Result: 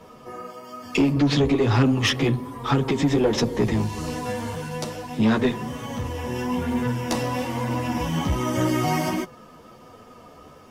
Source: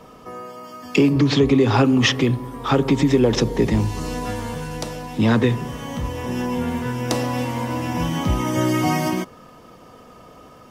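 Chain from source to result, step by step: chorus voices 2, 1.1 Hz, delay 11 ms, depth 3 ms; tube stage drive 14 dB, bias 0.3; gain +2 dB

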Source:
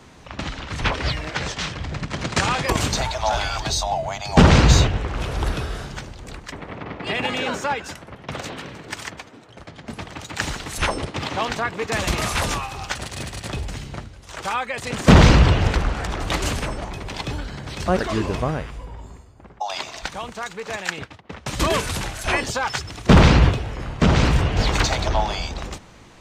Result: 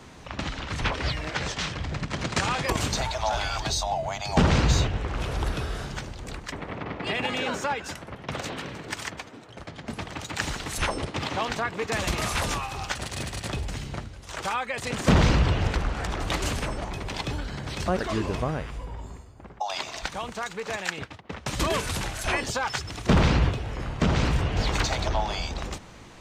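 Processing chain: compressor 1.5:1, threshold -31 dBFS, peak gain reduction 8.5 dB

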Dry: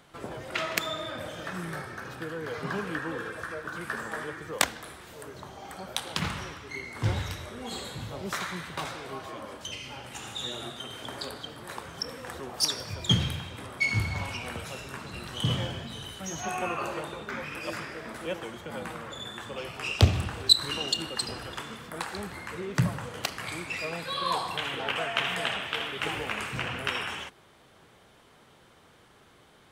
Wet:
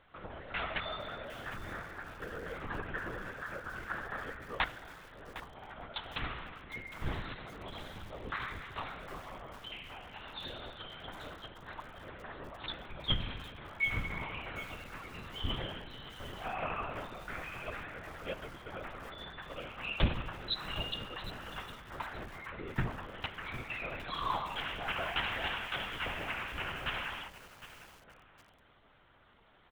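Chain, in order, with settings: outdoor echo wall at 210 m, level -18 dB; LPC vocoder at 8 kHz whisper; bell 1400 Hz +4.5 dB 2.4 oct; lo-fi delay 0.758 s, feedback 35%, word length 6-bit, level -13 dB; gain -8.5 dB

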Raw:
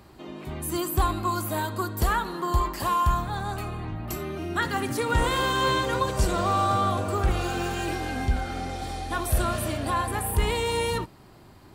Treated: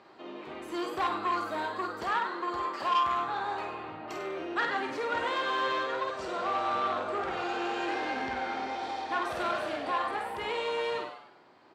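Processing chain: HPF 400 Hz 12 dB/oct; vocal rider within 5 dB 2 s; air absorption 170 m; doubler 49 ms -5.5 dB; on a send: frequency-shifting echo 99 ms, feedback 40%, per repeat +130 Hz, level -10 dB; on the sum: core saturation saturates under 1600 Hz; gain -2.5 dB

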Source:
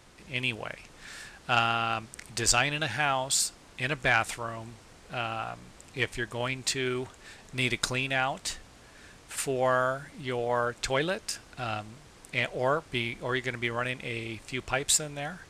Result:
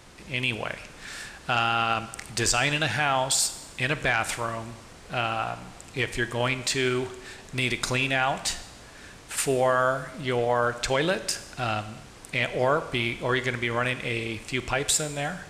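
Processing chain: limiter -18.5 dBFS, peak gain reduction 7 dB; Schroeder reverb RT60 1 s, combs from 33 ms, DRR 12.5 dB; gain +5.5 dB

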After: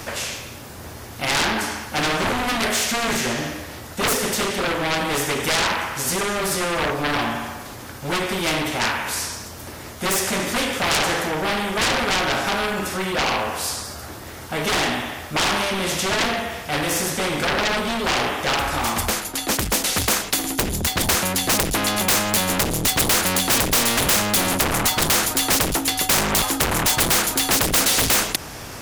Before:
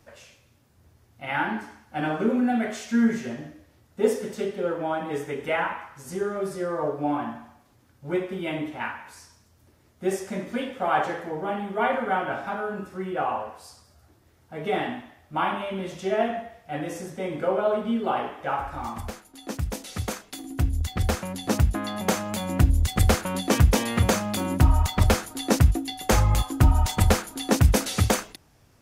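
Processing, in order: added harmonics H 5 -18 dB, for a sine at -6.5 dBFS; sine folder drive 16 dB, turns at -5 dBFS; spectral compressor 2:1

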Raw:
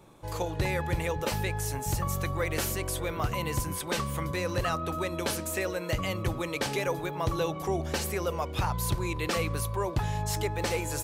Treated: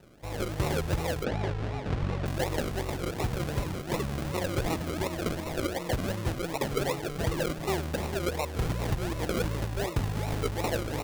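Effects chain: decimation with a swept rate 39×, swing 60% 2.7 Hz; 1.24–2.26 Bessel low-pass 3400 Hz, order 2

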